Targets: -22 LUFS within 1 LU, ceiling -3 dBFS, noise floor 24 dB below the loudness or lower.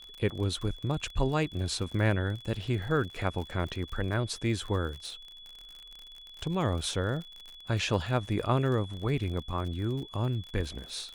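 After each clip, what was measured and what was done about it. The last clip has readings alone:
ticks 52/s; steady tone 3400 Hz; tone level -47 dBFS; loudness -31.5 LUFS; peak -12.5 dBFS; loudness target -22.0 LUFS
-> de-click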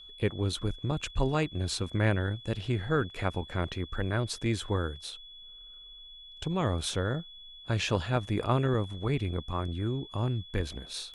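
ticks 0.18/s; steady tone 3400 Hz; tone level -47 dBFS
-> notch 3400 Hz, Q 30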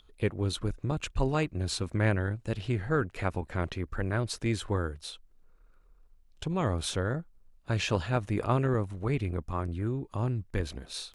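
steady tone none; loudness -31.5 LUFS; peak -11.5 dBFS; loudness target -22.0 LUFS
-> gain +9.5 dB; limiter -3 dBFS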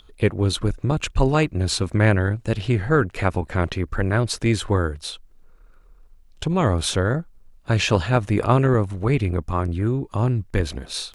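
loudness -22.0 LUFS; peak -3.0 dBFS; noise floor -51 dBFS

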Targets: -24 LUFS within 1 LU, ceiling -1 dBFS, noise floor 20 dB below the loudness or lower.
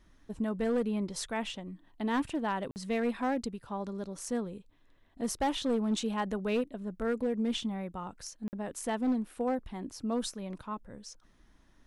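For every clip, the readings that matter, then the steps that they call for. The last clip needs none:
clipped 0.9%; flat tops at -24.0 dBFS; dropouts 2; longest dropout 49 ms; loudness -34.0 LUFS; peak -24.0 dBFS; loudness target -24.0 LUFS
-> clip repair -24 dBFS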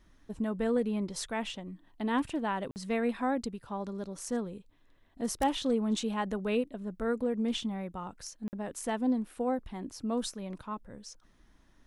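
clipped 0.0%; dropouts 2; longest dropout 49 ms
-> interpolate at 2.71/8.48, 49 ms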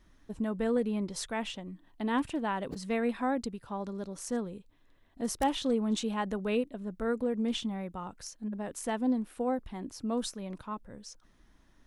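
dropouts 0; loudness -33.5 LUFS; peak -15.0 dBFS; loudness target -24.0 LUFS
-> gain +9.5 dB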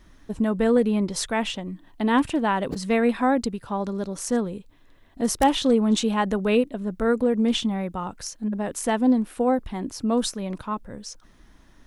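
loudness -24.0 LUFS; peak -5.5 dBFS; noise floor -54 dBFS

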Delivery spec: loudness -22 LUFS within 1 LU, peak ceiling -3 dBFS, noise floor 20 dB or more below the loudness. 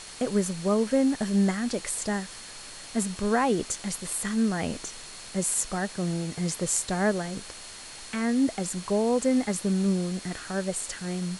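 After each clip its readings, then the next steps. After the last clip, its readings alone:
steady tone 4300 Hz; tone level -49 dBFS; noise floor -43 dBFS; noise floor target -48 dBFS; loudness -27.5 LUFS; peak -9.5 dBFS; loudness target -22.0 LUFS
-> notch 4300 Hz, Q 30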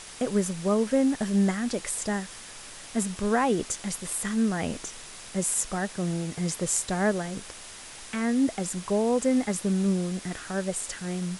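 steady tone none; noise floor -44 dBFS; noise floor target -48 dBFS
-> noise print and reduce 6 dB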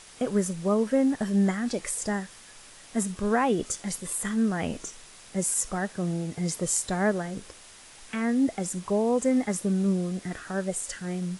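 noise floor -50 dBFS; loudness -27.5 LUFS; peak -9.5 dBFS; loudness target -22.0 LUFS
-> gain +5.5 dB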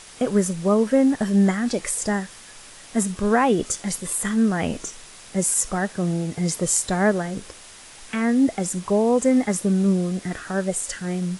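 loudness -22.0 LUFS; peak -4.0 dBFS; noise floor -44 dBFS

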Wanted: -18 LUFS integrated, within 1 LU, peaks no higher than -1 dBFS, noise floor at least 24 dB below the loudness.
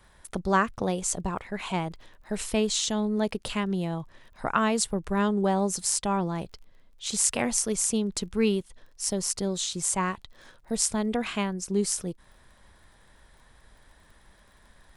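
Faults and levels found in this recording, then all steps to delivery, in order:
ticks 31/s; loudness -27.5 LUFS; peak -5.5 dBFS; loudness target -18.0 LUFS
-> de-click; gain +9.5 dB; limiter -1 dBFS

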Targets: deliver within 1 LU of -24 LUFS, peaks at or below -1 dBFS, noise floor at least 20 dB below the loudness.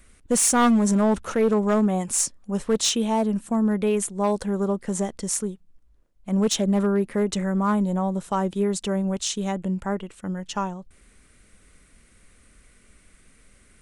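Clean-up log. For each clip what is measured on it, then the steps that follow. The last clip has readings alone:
clipped 0.8%; flat tops at -14.5 dBFS; loudness -23.5 LUFS; peak -14.5 dBFS; loudness target -24.0 LUFS
-> clip repair -14.5 dBFS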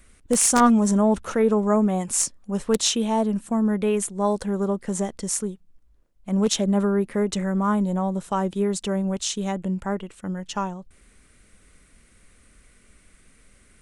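clipped 0.0%; loudness -23.0 LUFS; peak -5.5 dBFS; loudness target -24.0 LUFS
-> gain -1 dB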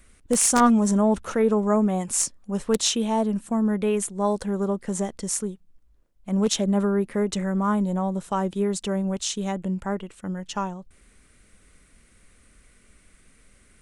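loudness -24.0 LUFS; peak -6.5 dBFS; noise floor -58 dBFS

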